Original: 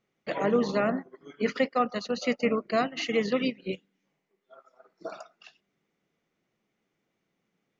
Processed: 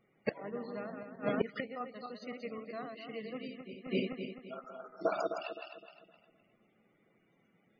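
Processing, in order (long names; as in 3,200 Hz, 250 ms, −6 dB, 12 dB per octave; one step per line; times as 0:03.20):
feedback delay that plays each chunk backwards 129 ms, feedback 60%, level −4.5 dB
gate with flip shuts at −23 dBFS, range −24 dB
spectral peaks only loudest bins 64
level +6.5 dB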